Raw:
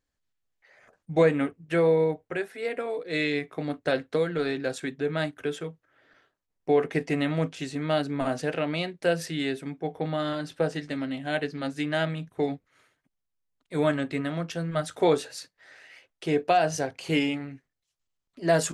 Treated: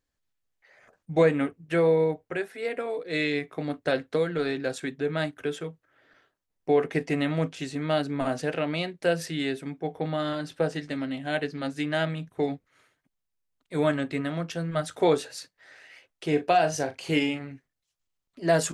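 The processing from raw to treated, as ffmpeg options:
-filter_complex "[0:a]asettb=1/sr,asplit=3[s0][s1][s2];[s0]atrim=end=16.284[s3];[s1]atrim=start=16.28:end=17.51,asetpts=PTS-STARTPTS,afade=t=in:d=0.004:c=qsin,afade=t=out:st=1.226:d=0.004:c=qsin,asplit=2[s4][s5];[s5]adelay=40,volume=0.282[s6];[s4][s6]amix=inputs=2:normalize=0,atrim=end_sample=54243[s7];[s2]atrim=start=17.506[s8];[s3][s7]acrossfade=d=0.004:c1=hsin:c2=qsin[s9];[s9][s8]acrossfade=d=0.004:c1=qsin:c2=hsin"

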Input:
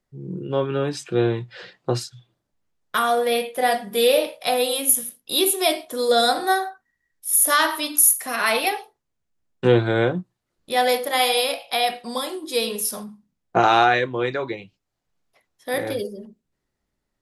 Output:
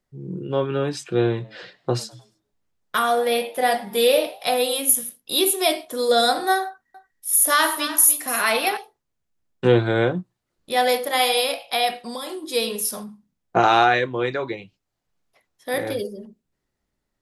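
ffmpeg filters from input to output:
-filter_complex "[0:a]asettb=1/sr,asplit=3[s0][s1][s2];[s0]atrim=end=1.244[s3];[s1]atrim=start=1.24:end=4.48,asetpts=PTS-STARTPTS,afade=t=in:d=0.004:c=qsin,afade=t=out:st=3.236:d=0.004:c=qsin,asplit=4[s4][s5][s6][s7];[s5]adelay=102,afreqshift=98,volume=0.0708[s8];[s6]adelay=204,afreqshift=196,volume=0.0305[s9];[s7]adelay=306,afreqshift=294,volume=0.013[s10];[s4][s8][s9][s10]amix=inputs=4:normalize=0,atrim=end_sample=142884[s11];[s2]atrim=start=4.476[s12];[s3][s11]acrossfade=d=0.004:c1=hsin:c2=qsin[s13];[s13][s12]acrossfade=d=0.004:c1=qsin:c2=hsin,asettb=1/sr,asplit=3[s14][s15][s16];[s14]atrim=end=6.654[s17];[s15]atrim=start=6.65:end=8.77,asetpts=PTS-STARTPTS,afade=t=in:d=0.004:c=qsin,afade=t=out:st=2.116:d=0.004:c=qsin,aecho=1:1:293:0.224,atrim=end_sample=93492[s18];[s16]atrim=start=8.766[s19];[s17][s18]acrossfade=d=0.004:c1=hsin:c2=qsin[s20];[s20][s19]acrossfade=d=0.004:c1=qsin:c2=hsin,asettb=1/sr,asplit=3[s21][s22][s23];[s21]atrim=end=11.984[s24];[s22]atrim=start=11.98:end=12.39,asetpts=PTS-STARTPTS,afade=t=in:d=0.004:c=qsin,afade=t=out:st=0.406:d=0.004:c=qsin,acompressor=threshold=0.0447:ratio=6:attack=3.2:release=140:knee=1:detection=peak[s25];[s23]atrim=start=12.386[s26];[s24][s25]acrossfade=d=0.004:c1=hsin:c2=qsin[s27];[s27][s26]acrossfade=d=0.004:c1=qsin:c2=hsin"

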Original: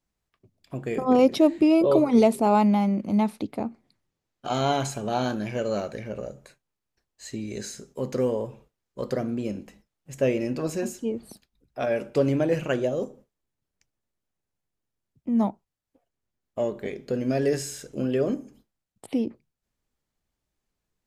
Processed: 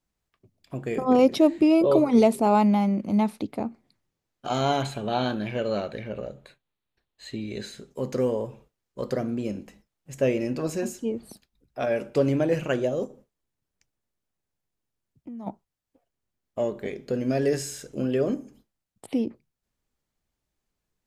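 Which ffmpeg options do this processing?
-filter_complex "[0:a]asettb=1/sr,asplit=3[s0][s1][s2];[s0]atrim=end=4.824[s3];[s1]atrim=start=4.82:end=7.91,asetpts=PTS-STARTPTS,afade=t=in:d=0.004:c=qsin,afade=t=out:st=3.086:d=0.004:c=qsin,highshelf=f=4600:t=q:w=3:g=-6[s4];[s2]atrim=start=7.906[s5];[s3][s4]acrossfade=d=0.004:c1=hsin:c2=qsin[s6];[s6][s5]acrossfade=d=0.004:c1=qsin:c2=hsin,asplit=3[s7][s8][s9];[s7]afade=t=out:st=13.06:d=0.02[s10];[s8]acompressor=threshold=0.0158:ratio=10:attack=3.2:release=140:knee=1:detection=peak,afade=t=in:st=13.06:d=0.02,afade=t=out:st=15.46:d=0.02[s11];[s9]afade=t=in:st=15.46:d=0.02[s12];[s10][s11][s12]amix=inputs=3:normalize=0"

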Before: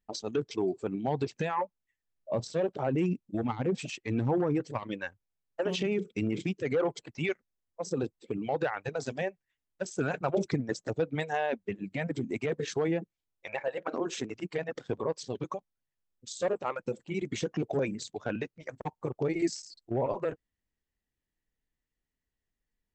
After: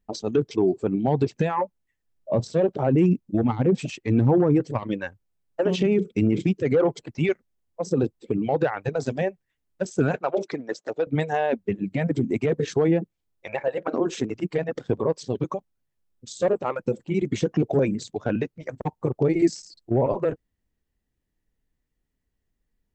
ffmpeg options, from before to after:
-filter_complex "[0:a]asettb=1/sr,asplit=3[s0][s1][s2];[s0]atrim=end=10.164[s3];[s1]atrim=start=10.16:end=11.07,asetpts=PTS-STARTPTS,afade=t=in:d=0.004:c=qsin,afade=t=out:st=0.906:d=0.004:c=qsin,highpass=500,lowpass=5900[s4];[s2]atrim=start=11.066[s5];[s3][s4]acrossfade=d=0.004:c1=hsin:c2=qsin[s6];[s6][s5]acrossfade=d=0.004:c1=qsin:c2=hsin,tiltshelf=f=690:g=4.5,volume=2.11"

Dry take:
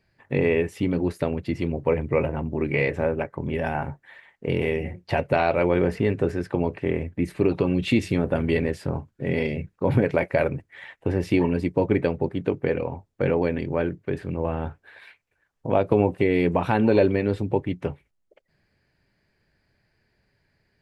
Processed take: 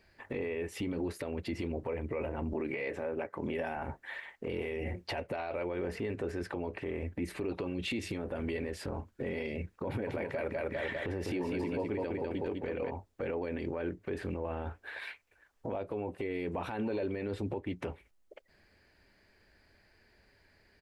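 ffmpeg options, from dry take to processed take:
-filter_complex "[0:a]asettb=1/sr,asplit=3[s0][s1][s2];[s0]atrim=end=2.534[s3];[s1]atrim=start=2.53:end=3.77,asetpts=PTS-STARTPTS,afade=t=in:d=0.004:c=qsin,afade=t=out:st=1.236:d=0.004:c=qsin,highpass=130[s4];[s2]atrim=start=3.766[s5];[s3][s4]acrossfade=d=0.004:c1=hsin:c2=qsin[s6];[s6][s5]acrossfade=d=0.004:c1=qsin:c2=hsin,asplit=3[s7][s8][s9];[s7]afade=t=out:st=10.06:d=0.02[s10];[s8]aecho=1:1:200|400|600|800:0.562|0.197|0.0689|0.0241,afade=t=in:st=10.06:d=0.02,afade=t=out:st=12.89:d=0.02[s11];[s9]afade=t=in:st=12.89:d=0.02[s12];[s10][s11][s12]amix=inputs=3:normalize=0,equalizer=f=140:w=2:g=-13.5,acompressor=threshold=0.0251:ratio=10,alimiter=level_in=2.37:limit=0.0631:level=0:latency=1:release=17,volume=0.422,volume=1.78"

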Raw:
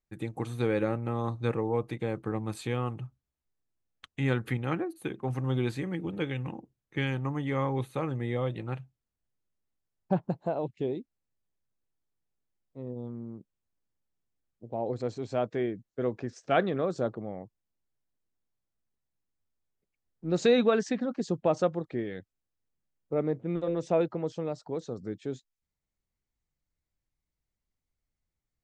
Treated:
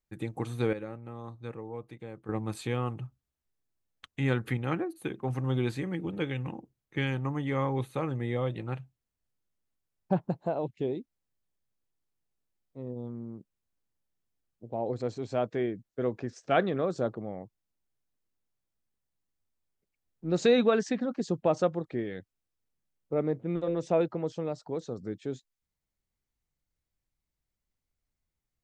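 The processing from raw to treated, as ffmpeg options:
-filter_complex "[0:a]asplit=3[s0][s1][s2];[s0]atrim=end=0.732[s3];[s1]atrim=start=0.728:end=2.292,asetpts=PTS-STARTPTS,volume=0.282[s4];[s2]atrim=start=2.288[s5];[s3][s4]acrossfade=d=0.004:c1=hsin:c2=hsin[s6];[s6][s5]acrossfade=d=0.004:c1=hsin:c2=hsin"

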